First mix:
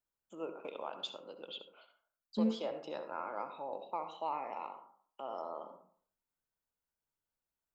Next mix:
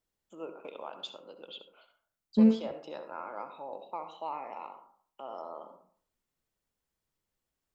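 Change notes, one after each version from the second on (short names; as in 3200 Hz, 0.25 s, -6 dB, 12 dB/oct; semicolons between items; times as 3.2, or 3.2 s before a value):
second voice +10.5 dB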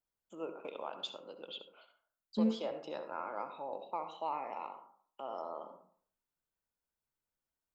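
second voice -9.5 dB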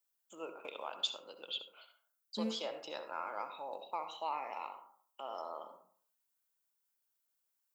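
master: add tilt +3.5 dB/oct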